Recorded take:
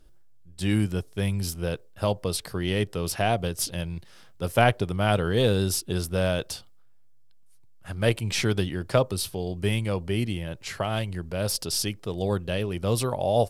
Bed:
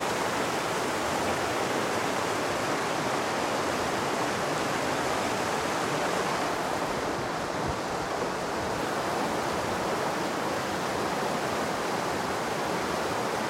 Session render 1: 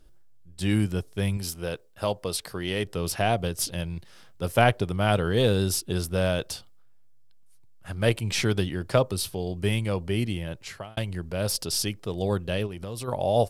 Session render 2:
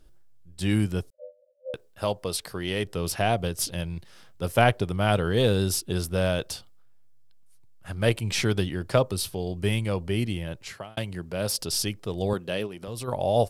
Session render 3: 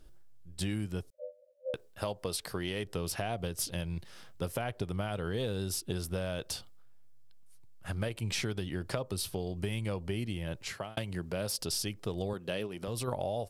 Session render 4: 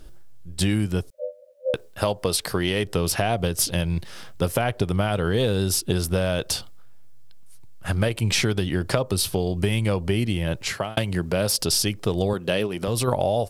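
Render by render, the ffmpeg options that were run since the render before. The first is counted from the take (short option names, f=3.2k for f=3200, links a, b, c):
-filter_complex "[0:a]asettb=1/sr,asplit=3[a][b][c];[a]atrim=end=1.374[d];[b]atrim=start=1.37:end=2.85,asetpts=PTS-STARTPTS,afade=t=in:d=0.004:c=qsin,afade=t=out:st=1.476:d=0.004:c=qsin,lowshelf=f=240:g=-7.5[e];[c]atrim=start=2.846[f];[d][e]acrossfade=d=0.004:c1=hsin:c2=qsin[g];[g][f]acrossfade=d=0.004:c1=qsin:c2=hsin,asplit=3[h][i][j];[h]afade=t=out:st=12.66:d=0.02[k];[i]acompressor=threshold=-32dB:ratio=5:attack=3.2:release=140:knee=1:detection=peak,afade=t=in:st=12.66:d=0.02,afade=t=out:st=13.07:d=0.02[l];[j]afade=t=in:st=13.07:d=0.02[m];[k][l][m]amix=inputs=3:normalize=0,asplit=2[n][o];[n]atrim=end=10.97,asetpts=PTS-STARTPTS,afade=t=out:st=10.52:d=0.45[p];[o]atrim=start=10.97,asetpts=PTS-STARTPTS,afade=t=in:d=0.004:c=hsin[q];[p][q]concat=n=2:v=0:a=1"
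-filter_complex "[0:a]asettb=1/sr,asplit=3[a][b][c];[a]atrim=end=1.104[d];[b]atrim=start=1.1:end=1.74,asetpts=PTS-STARTPTS,afade=t=in:d=0.004:c=qsin,afade=t=out:st=0.636:d=0.004:c=qsin,asuperpass=centerf=560:order=20:qfactor=4.7[e];[c]atrim=start=1.736[f];[d][e]acrossfade=d=0.004:c1=hsin:c2=qsin[g];[g][f]acrossfade=d=0.004:c1=qsin:c2=hsin,asettb=1/sr,asplit=3[h][i][j];[h]atrim=end=10.734[k];[i]atrim=start=10.73:end=11.59,asetpts=PTS-STARTPTS,afade=t=in:d=0.004:c=qsin,afade=t=out:st=0.856:d=0.004:c=qsin,highpass=110[l];[j]atrim=start=11.586[m];[k][l]acrossfade=d=0.004:c1=hsin:c2=qsin[n];[n][m]acrossfade=d=0.004:c1=qsin:c2=hsin,asettb=1/sr,asplit=3[o][p][q];[o]atrim=end=12.334[r];[p]atrim=start=12.33:end=12.88,asetpts=PTS-STARTPTS,afade=t=in:d=0.004:c=qsin,afade=t=out:st=0.546:d=0.004:c=qsin,highpass=180[s];[q]atrim=start=12.876[t];[r][s]acrossfade=d=0.004:c1=hsin:c2=qsin[u];[u][t]acrossfade=d=0.004:c1=qsin:c2=hsin"
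-af "alimiter=limit=-14.5dB:level=0:latency=1:release=174,acompressor=threshold=-31dB:ratio=6"
-af "volume=12dB"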